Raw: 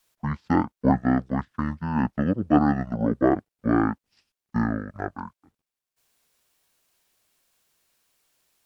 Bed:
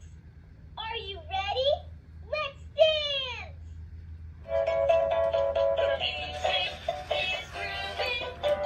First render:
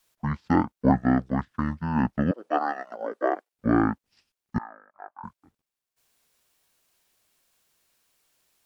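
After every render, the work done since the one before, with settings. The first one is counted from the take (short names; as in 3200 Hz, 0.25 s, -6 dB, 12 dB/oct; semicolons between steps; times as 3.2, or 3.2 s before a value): 2.31–3.52 HPF 460 Hz 24 dB/oct; 4.58–5.24 ladder band-pass 1000 Hz, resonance 55%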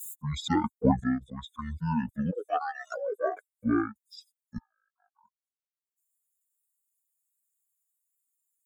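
per-bin expansion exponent 3; backwards sustainer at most 33 dB/s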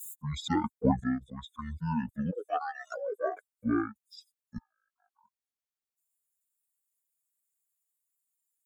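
gain -2.5 dB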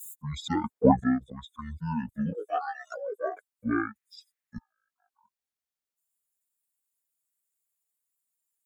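0.69–1.32 bell 600 Hz +9 dB 2.9 oct; 2.1–2.77 doubler 19 ms -4 dB; 3.71–4.56 bell 1900 Hz +11.5 dB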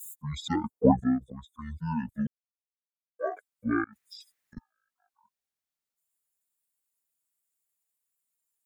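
0.56–1.61 bell 2600 Hz -11 dB 2.2 oct; 2.27–3.19 mute; 3.84–4.57 negative-ratio compressor -52 dBFS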